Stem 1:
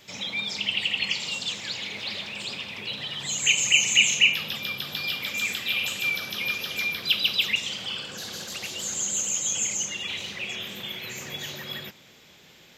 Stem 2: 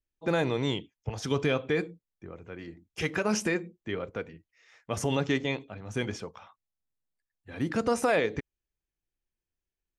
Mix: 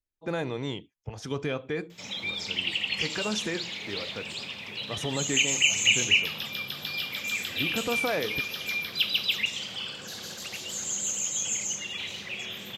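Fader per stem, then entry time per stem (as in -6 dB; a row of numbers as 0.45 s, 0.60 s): -3.0 dB, -4.0 dB; 1.90 s, 0.00 s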